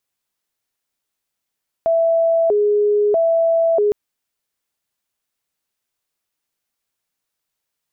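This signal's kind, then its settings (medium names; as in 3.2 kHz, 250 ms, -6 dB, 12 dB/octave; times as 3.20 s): siren hi-lo 415–662 Hz 0.78 per s sine -12.5 dBFS 2.06 s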